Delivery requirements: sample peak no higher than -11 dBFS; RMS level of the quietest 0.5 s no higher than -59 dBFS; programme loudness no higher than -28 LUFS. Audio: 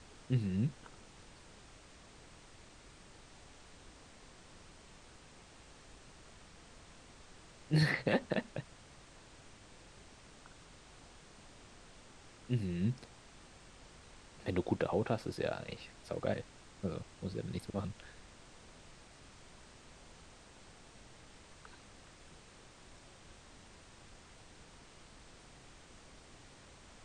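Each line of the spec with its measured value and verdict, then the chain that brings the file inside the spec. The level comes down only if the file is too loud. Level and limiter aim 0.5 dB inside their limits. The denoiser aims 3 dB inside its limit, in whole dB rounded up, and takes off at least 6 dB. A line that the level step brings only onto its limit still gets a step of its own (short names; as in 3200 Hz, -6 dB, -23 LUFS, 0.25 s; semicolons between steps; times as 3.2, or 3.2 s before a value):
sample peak -17.5 dBFS: OK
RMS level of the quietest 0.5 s -58 dBFS: fail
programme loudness -37.0 LUFS: OK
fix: denoiser 6 dB, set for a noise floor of -58 dBFS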